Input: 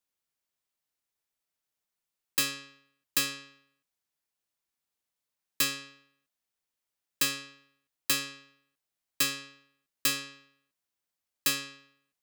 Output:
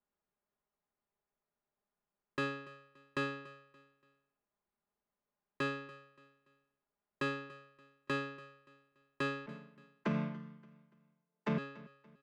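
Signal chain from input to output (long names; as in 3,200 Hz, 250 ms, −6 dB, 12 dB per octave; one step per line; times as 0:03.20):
0:09.46–0:11.58: channel vocoder with a chord as carrier minor triad, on D3
low-pass filter 1,100 Hz 12 dB per octave
comb filter 4.9 ms, depth 58%
brickwall limiter −29.5 dBFS, peak gain reduction 10 dB
repeating echo 287 ms, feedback 37%, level −20 dB
level +5 dB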